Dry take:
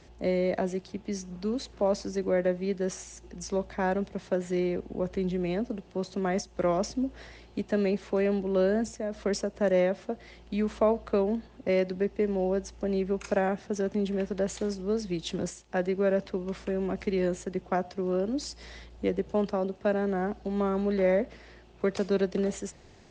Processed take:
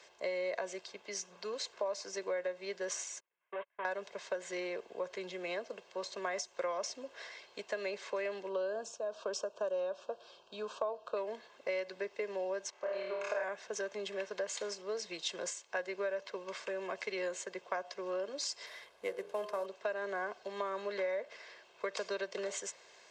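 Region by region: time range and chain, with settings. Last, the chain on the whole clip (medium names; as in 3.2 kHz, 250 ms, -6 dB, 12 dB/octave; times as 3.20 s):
3.20–3.85 s: one-bit delta coder 16 kbps, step -44 dBFS + gate -35 dBFS, range -37 dB + bass shelf 250 Hz -10.5 dB
8.49–11.17 s: Butterworth band-stop 2 kHz, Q 1.7 + treble shelf 4.8 kHz -9.5 dB
12.70–13.44 s: band-pass filter 1 kHz, Q 0.64 + flutter echo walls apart 4.6 m, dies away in 1 s
18.66–19.66 s: CVSD coder 64 kbps + treble shelf 3.7 kHz -10 dB + de-hum 45.21 Hz, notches 38
whole clip: high-pass 760 Hz 12 dB/octave; comb 1.9 ms, depth 54%; compression 6:1, threshold -34 dBFS; trim +1 dB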